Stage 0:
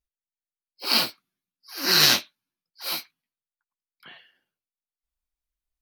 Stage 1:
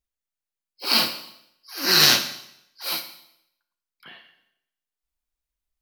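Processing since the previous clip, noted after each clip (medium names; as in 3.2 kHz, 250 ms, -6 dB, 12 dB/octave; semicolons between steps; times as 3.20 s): Schroeder reverb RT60 0.75 s, combs from 31 ms, DRR 8.5 dB; trim +1.5 dB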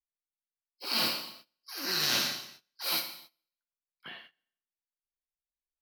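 gate -52 dBFS, range -19 dB; reverse; compression 10:1, threshold -26 dBFS, peak gain reduction 15 dB; reverse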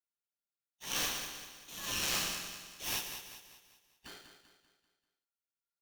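on a send: feedback delay 195 ms, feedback 45%, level -9 dB; on the sum: polarity switched at an audio rate 1.4 kHz; trim -5.5 dB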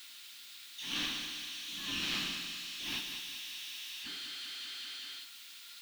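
zero-crossing glitches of -27 dBFS; FFT filter 120 Hz 0 dB, 280 Hz +12 dB, 470 Hz -6 dB, 670 Hz -5 dB, 1.1 kHz 0 dB, 3.7 kHz +7 dB, 5.9 kHz -8 dB, 12 kHz -18 dB; trim -5 dB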